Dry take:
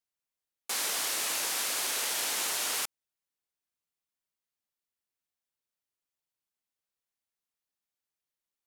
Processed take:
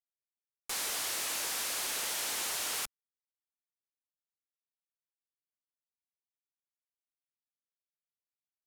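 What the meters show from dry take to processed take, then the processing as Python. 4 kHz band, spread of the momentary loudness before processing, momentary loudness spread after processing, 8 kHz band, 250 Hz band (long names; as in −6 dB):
−3.5 dB, 5 LU, 5 LU, −3.5 dB, −3.0 dB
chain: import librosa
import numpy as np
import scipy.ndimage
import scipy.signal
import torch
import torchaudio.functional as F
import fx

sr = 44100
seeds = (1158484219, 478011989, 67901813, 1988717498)

y = fx.tube_stage(x, sr, drive_db=30.0, bias=0.3)
y = np.where(np.abs(y) >= 10.0 ** (-56.5 / 20.0), y, 0.0)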